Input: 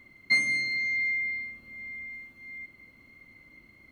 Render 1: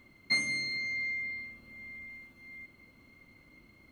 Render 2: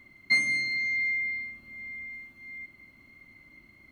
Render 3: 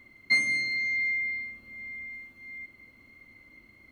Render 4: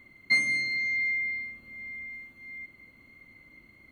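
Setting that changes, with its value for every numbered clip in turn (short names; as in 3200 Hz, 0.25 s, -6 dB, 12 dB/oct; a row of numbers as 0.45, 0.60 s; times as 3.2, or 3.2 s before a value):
notch, frequency: 2000, 480, 160, 5300 Hz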